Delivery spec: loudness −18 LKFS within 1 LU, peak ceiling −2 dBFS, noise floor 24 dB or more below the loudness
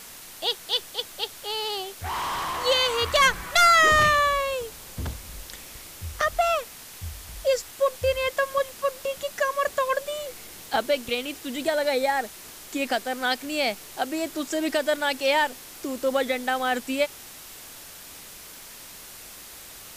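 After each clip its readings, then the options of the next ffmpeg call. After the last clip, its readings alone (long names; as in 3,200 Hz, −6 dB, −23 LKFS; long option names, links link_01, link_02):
background noise floor −44 dBFS; target noise floor −49 dBFS; integrated loudness −24.5 LKFS; sample peak −11.5 dBFS; target loudness −18.0 LKFS
→ -af "afftdn=noise_reduction=6:noise_floor=-44"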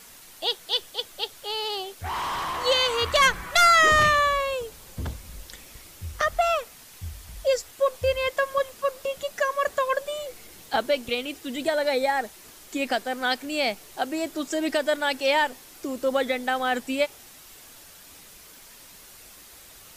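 background noise floor −48 dBFS; target noise floor −49 dBFS
→ -af "afftdn=noise_reduction=6:noise_floor=-48"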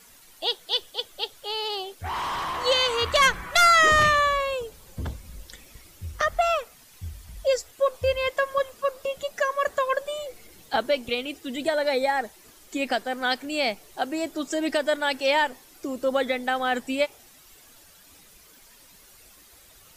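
background noise floor −53 dBFS; integrated loudness −24.5 LKFS; sample peak −11.5 dBFS; target loudness −18.0 LKFS
→ -af "volume=6.5dB"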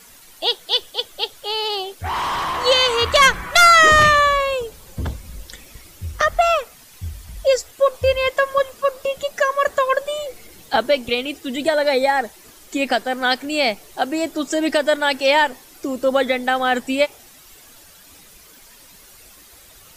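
integrated loudness −18.0 LKFS; sample peak −5.0 dBFS; background noise floor −47 dBFS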